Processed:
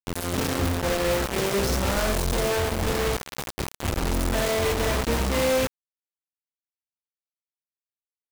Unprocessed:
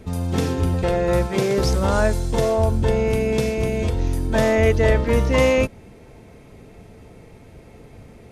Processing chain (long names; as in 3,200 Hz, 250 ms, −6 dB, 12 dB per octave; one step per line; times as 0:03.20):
soft clipping −21 dBFS, distortion −9 dB
0:03.16–0:03.99: notch comb filter 220 Hz
flutter between parallel walls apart 11.2 metres, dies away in 0.43 s
bit reduction 4 bits
level −2.5 dB